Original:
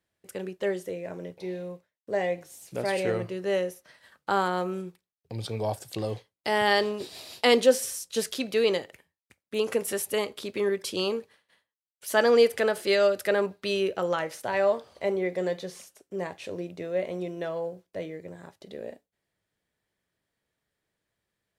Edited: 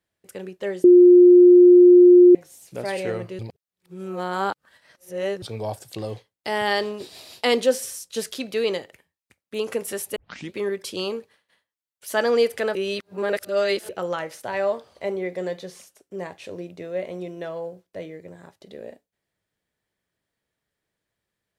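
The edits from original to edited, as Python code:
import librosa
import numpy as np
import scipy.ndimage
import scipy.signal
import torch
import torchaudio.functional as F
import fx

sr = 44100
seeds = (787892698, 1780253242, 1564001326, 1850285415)

y = fx.edit(x, sr, fx.bleep(start_s=0.84, length_s=1.51, hz=356.0, db=-7.0),
    fx.reverse_span(start_s=3.39, length_s=2.03),
    fx.tape_start(start_s=10.16, length_s=0.38),
    fx.reverse_span(start_s=12.75, length_s=1.14), tone=tone)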